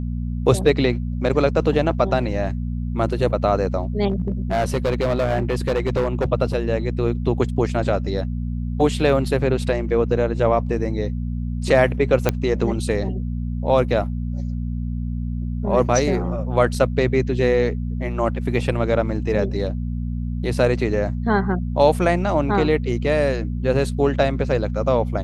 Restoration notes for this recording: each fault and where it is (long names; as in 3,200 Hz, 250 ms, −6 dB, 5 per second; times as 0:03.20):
mains hum 60 Hz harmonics 4 −25 dBFS
0:04.10–0:06.26: clipping −15.5 dBFS
0:12.29: click −4 dBFS